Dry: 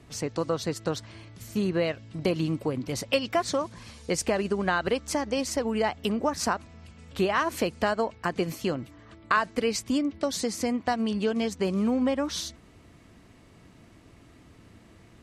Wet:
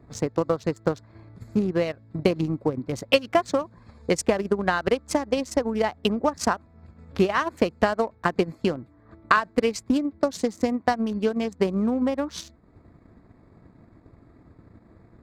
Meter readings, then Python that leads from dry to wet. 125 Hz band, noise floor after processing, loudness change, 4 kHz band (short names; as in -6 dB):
+2.5 dB, -56 dBFS, +3.0 dB, +0.5 dB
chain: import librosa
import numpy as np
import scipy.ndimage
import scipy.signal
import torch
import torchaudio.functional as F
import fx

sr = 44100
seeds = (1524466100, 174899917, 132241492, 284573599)

y = fx.wiener(x, sr, points=15)
y = fx.transient(y, sr, attack_db=6, sustain_db=-6)
y = y * librosa.db_to_amplitude(1.0)